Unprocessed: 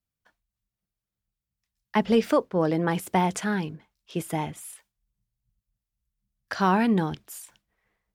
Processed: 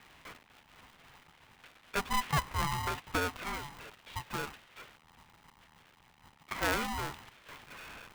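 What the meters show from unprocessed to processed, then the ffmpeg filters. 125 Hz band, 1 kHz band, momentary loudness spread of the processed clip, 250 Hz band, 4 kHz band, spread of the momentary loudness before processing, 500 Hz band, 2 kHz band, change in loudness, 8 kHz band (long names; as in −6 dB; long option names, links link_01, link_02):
−9.0 dB, −7.0 dB, 20 LU, −17.5 dB, −0.5 dB, 16 LU, −14.5 dB, −2.5 dB, −10.0 dB, −3.5 dB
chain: -af "aeval=exprs='val(0)+0.5*0.0266*sgn(val(0))':channel_layout=same,highpass=frequency=300:width_type=q:width=0.5412,highpass=frequency=300:width_type=q:width=1.307,lowpass=frequency=2900:width_type=q:width=0.5176,lowpass=frequency=2900:width_type=q:width=0.7071,lowpass=frequency=2900:width_type=q:width=1.932,afreqshift=52,aeval=exprs='val(0)*sgn(sin(2*PI*500*n/s))':channel_layout=same,volume=-8.5dB"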